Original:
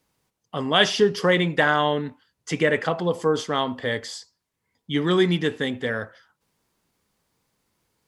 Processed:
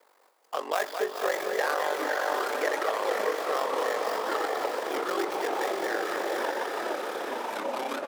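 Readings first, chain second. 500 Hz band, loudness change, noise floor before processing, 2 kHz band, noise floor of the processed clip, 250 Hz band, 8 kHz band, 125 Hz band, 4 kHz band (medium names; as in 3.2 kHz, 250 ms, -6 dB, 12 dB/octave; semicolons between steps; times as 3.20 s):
-4.0 dB, -7.0 dB, -80 dBFS, -5.5 dB, -63 dBFS, -12.0 dB, -1.5 dB, under -30 dB, -10.5 dB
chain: median filter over 15 samples; echo that smears into a reverb 532 ms, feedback 43%, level -3 dB; in parallel at 0 dB: gain riding within 4 dB; on the sum: ring modulator 24 Hz; delay 215 ms -8 dB; ever faster or slower copies 568 ms, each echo -6 st, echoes 3; high-pass 470 Hz 24 dB/octave; treble shelf 9.8 kHz +9.5 dB; three bands compressed up and down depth 70%; trim -8.5 dB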